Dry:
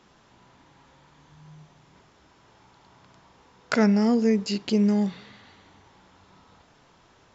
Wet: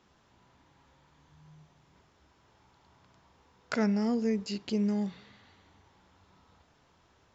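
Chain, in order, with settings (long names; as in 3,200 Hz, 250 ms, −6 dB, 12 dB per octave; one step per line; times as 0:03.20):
parametric band 74 Hz +8 dB 0.6 octaves
level −8 dB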